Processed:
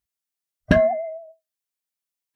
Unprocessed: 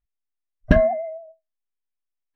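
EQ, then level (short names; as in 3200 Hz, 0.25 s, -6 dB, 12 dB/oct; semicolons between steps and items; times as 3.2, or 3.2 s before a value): HPF 82 Hz 12 dB/oct; high shelf 3300 Hz +9.5 dB; 0.0 dB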